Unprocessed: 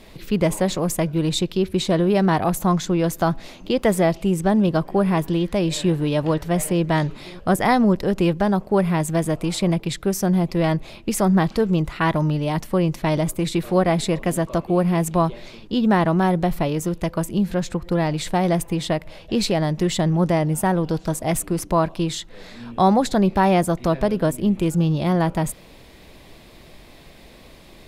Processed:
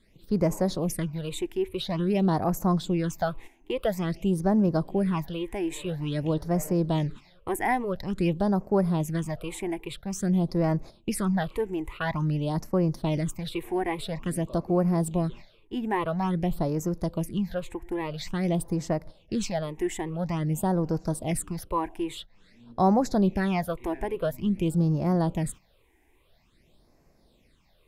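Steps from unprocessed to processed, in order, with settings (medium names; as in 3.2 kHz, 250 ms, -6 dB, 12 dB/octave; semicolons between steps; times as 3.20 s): gate -33 dBFS, range -11 dB; phase shifter stages 8, 0.49 Hz, lowest notch 160–3400 Hz; trim -5.5 dB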